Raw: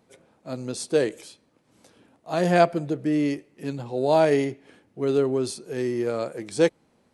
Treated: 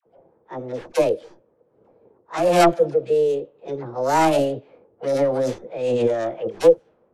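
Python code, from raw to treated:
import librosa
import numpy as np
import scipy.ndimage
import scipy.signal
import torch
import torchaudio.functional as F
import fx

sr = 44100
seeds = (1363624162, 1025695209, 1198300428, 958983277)

y = fx.tracing_dist(x, sr, depth_ms=0.35)
y = scipy.signal.sosfilt(scipy.signal.butter(4, 8800.0, 'lowpass', fs=sr, output='sos'), y)
y = fx.env_lowpass(y, sr, base_hz=540.0, full_db=-18.5)
y = fx.peak_eq(y, sr, hz=340.0, db=14.5, octaves=0.23)
y = fx.formant_shift(y, sr, semitones=6)
y = fx.dispersion(y, sr, late='lows', ms=63.0, hz=780.0)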